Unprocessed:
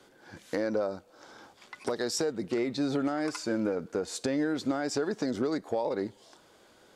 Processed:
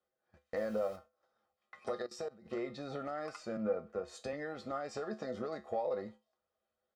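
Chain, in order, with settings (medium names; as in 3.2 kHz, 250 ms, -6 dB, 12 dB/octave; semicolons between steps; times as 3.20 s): bass shelf 450 Hz -7 dB; 0.56–0.96 s: word length cut 8-bit, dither triangular; comb 1.6 ms, depth 61%; gate -48 dBFS, range -22 dB; feedback comb 72 Hz, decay 0.23 s, harmonics odd, mix 80%; 2.02–2.46 s: level held to a coarse grid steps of 21 dB; low-pass 1.2 kHz 6 dB/octave; 3.57–4.33 s: three bands expanded up and down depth 40%; trim +5 dB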